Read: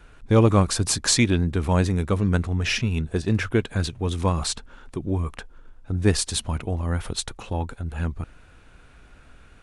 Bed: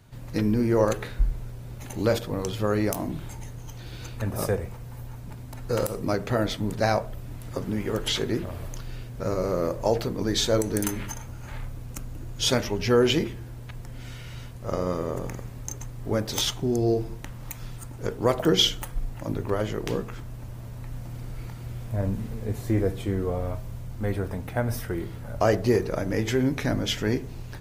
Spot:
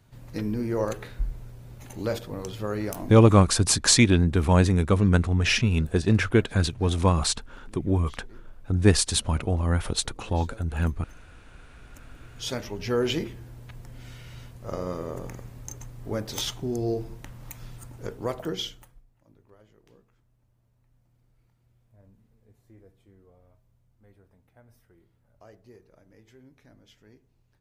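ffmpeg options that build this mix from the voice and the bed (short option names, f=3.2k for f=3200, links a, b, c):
-filter_complex "[0:a]adelay=2800,volume=1.5dB[a];[1:a]volume=15.5dB,afade=t=out:st=3.06:d=0.5:silence=0.1,afade=t=in:st=11.7:d=1.4:silence=0.0891251,afade=t=out:st=17.93:d=1.1:silence=0.0530884[b];[a][b]amix=inputs=2:normalize=0"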